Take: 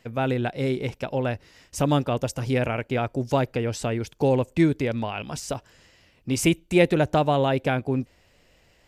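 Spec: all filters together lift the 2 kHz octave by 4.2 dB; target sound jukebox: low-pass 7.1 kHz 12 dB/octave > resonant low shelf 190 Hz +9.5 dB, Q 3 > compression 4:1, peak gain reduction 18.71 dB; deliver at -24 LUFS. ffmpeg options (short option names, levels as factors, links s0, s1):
-af "lowpass=7100,lowshelf=f=190:t=q:w=3:g=9.5,equalizer=f=2000:t=o:g=5.5,acompressor=threshold=0.0316:ratio=4,volume=2.37"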